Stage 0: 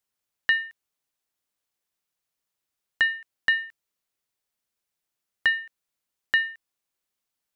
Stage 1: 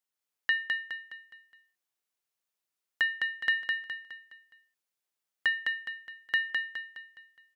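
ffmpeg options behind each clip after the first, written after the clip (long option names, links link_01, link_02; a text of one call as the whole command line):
ffmpeg -i in.wav -filter_complex "[0:a]lowshelf=frequency=140:gain=-11.5,asplit=2[link_01][link_02];[link_02]aecho=0:1:208|416|624|832|1040:0.668|0.287|0.124|0.0531|0.0228[link_03];[link_01][link_03]amix=inputs=2:normalize=0,volume=-5.5dB" out.wav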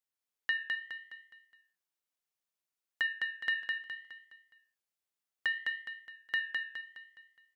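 ffmpeg -i in.wav -af "flanger=delay=7.5:depth=7.1:regen=76:speed=0.66:shape=triangular" out.wav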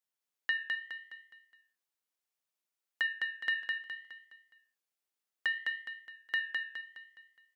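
ffmpeg -i in.wav -af "highpass=170" out.wav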